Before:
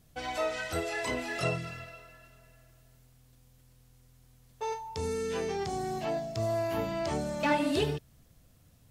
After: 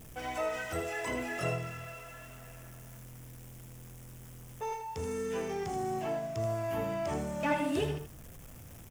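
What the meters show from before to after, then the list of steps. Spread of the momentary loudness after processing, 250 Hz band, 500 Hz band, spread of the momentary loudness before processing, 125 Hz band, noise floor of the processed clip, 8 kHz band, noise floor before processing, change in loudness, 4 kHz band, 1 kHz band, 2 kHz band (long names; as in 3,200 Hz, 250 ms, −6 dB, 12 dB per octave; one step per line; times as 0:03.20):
17 LU, −2.0 dB, −2.0 dB, 9 LU, −1.0 dB, −50 dBFS, −2.0 dB, −62 dBFS, −2.5 dB, −6.5 dB, −2.0 dB, −2.5 dB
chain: converter with a step at zero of −42 dBFS
parametric band 4,200 Hz −12 dB 0.48 octaves
on a send: single-tap delay 80 ms −8 dB
on the sum: level −3.5 dB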